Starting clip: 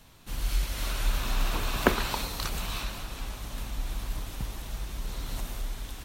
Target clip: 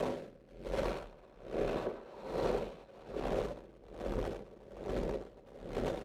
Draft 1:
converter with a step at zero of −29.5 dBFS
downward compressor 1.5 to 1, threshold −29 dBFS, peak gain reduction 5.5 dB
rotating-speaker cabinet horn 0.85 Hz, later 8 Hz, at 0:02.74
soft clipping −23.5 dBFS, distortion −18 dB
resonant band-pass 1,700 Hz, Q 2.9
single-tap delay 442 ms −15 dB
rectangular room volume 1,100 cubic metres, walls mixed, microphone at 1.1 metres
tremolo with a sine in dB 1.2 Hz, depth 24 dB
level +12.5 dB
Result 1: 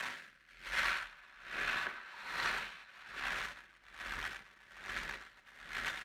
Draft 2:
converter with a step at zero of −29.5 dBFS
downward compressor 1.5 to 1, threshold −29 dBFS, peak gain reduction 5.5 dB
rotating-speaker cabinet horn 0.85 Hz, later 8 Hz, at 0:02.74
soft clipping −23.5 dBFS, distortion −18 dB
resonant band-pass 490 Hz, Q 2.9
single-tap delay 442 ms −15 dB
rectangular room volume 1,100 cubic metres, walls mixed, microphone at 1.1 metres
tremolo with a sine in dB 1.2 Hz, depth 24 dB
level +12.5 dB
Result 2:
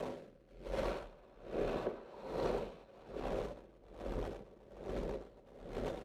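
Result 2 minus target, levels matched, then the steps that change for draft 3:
converter with a step at zero: distortion −5 dB
change: converter with a step at zero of −20.5 dBFS

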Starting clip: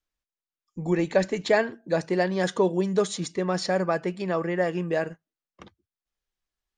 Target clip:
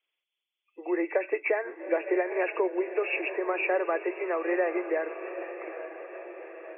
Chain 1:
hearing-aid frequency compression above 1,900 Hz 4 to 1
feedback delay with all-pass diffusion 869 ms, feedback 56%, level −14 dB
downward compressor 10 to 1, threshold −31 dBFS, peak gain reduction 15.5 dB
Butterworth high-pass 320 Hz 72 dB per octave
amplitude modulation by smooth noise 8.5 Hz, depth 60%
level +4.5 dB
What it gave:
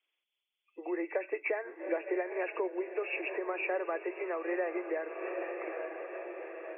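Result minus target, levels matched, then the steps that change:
downward compressor: peak gain reduction +7 dB
change: downward compressor 10 to 1, threshold −23.5 dBFS, peak gain reduction 9 dB

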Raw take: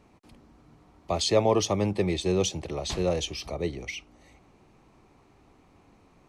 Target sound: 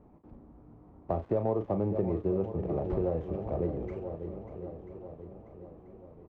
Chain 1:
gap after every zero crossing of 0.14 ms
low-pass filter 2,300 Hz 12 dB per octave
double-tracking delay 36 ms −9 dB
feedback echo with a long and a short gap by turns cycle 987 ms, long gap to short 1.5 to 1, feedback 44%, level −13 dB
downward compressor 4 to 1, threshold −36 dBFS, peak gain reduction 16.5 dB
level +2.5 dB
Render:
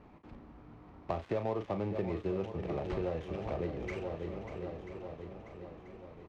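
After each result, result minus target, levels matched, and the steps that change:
2,000 Hz band +15.5 dB; downward compressor: peak gain reduction +6 dB
change: low-pass filter 750 Hz 12 dB per octave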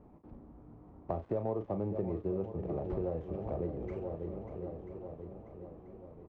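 downward compressor: peak gain reduction +5 dB
change: downward compressor 4 to 1, threshold −29 dBFS, peak gain reduction 11 dB

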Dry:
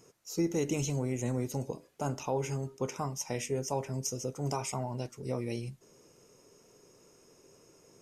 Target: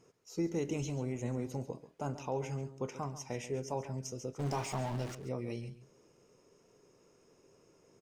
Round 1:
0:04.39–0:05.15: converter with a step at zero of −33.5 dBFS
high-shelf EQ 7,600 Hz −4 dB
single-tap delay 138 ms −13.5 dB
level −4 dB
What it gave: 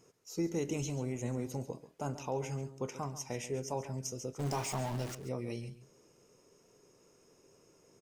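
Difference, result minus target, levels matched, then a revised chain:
8,000 Hz band +4.0 dB
0:04.39–0:05.15: converter with a step at zero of −33.5 dBFS
high-shelf EQ 7,600 Hz −14.5 dB
single-tap delay 138 ms −13.5 dB
level −4 dB

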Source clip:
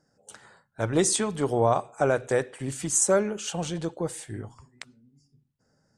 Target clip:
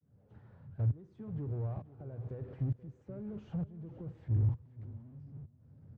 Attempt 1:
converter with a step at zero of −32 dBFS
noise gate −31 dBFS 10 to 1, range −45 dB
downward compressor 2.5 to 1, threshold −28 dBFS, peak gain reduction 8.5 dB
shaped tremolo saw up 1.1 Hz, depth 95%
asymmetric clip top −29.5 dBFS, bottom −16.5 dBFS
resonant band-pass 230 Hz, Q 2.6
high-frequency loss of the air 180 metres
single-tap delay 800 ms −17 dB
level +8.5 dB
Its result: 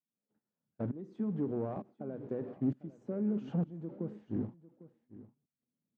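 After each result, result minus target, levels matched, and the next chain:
echo 320 ms late; 250 Hz band +8.0 dB; converter with a step at zero: distortion −5 dB
converter with a step at zero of −32 dBFS
noise gate −31 dBFS 10 to 1, range −45 dB
downward compressor 2.5 to 1, threshold −28 dBFS, peak gain reduction 8.5 dB
shaped tremolo saw up 1.1 Hz, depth 95%
asymmetric clip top −29.5 dBFS, bottom −16.5 dBFS
resonant band-pass 230 Hz, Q 2.6
high-frequency loss of the air 180 metres
single-tap delay 480 ms −17 dB
level +8.5 dB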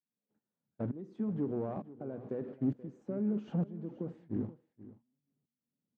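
250 Hz band +8.0 dB; converter with a step at zero: distortion −5 dB
converter with a step at zero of −32 dBFS
noise gate −31 dBFS 10 to 1, range −45 dB
downward compressor 2.5 to 1, threshold −28 dBFS, peak gain reduction 8.5 dB
shaped tremolo saw up 1.1 Hz, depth 95%
asymmetric clip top −29.5 dBFS, bottom −16.5 dBFS
resonant band-pass 96 Hz, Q 2.6
high-frequency loss of the air 180 metres
single-tap delay 480 ms −17 dB
level +8.5 dB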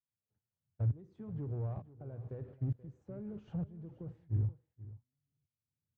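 converter with a step at zero: distortion −5 dB
converter with a step at zero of −26 dBFS
noise gate −31 dBFS 10 to 1, range −45 dB
downward compressor 2.5 to 1, threshold −28 dBFS, peak gain reduction 8.5 dB
shaped tremolo saw up 1.1 Hz, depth 95%
asymmetric clip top −29.5 dBFS, bottom −16.5 dBFS
resonant band-pass 96 Hz, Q 2.6
high-frequency loss of the air 180 metres
single-tap delay 480 ms −17 dB
level +8.5 dB

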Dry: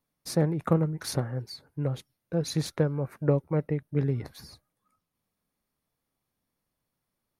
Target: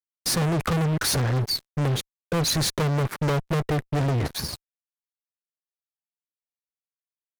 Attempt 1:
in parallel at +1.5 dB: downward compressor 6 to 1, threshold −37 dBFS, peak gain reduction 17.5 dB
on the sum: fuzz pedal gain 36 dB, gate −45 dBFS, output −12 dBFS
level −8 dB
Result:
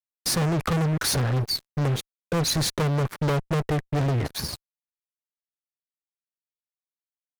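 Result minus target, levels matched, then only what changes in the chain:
downward compressor: peak gain reduction +7.5 dB
change: downward compressor 6 to 1, threshold −28 dBFS, peak gain reduction 10 dB

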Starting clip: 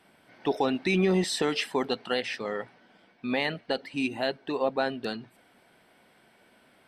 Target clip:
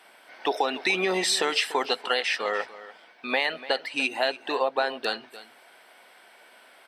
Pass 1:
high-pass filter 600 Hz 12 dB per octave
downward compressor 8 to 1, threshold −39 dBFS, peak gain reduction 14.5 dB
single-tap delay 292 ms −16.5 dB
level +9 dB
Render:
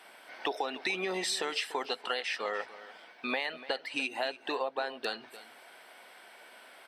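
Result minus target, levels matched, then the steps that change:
downward compressor: peak gain reduction +9 dB
change: downward compressor 8 to 1, threshold −29 dBFS, peak gain reduction 6 dB

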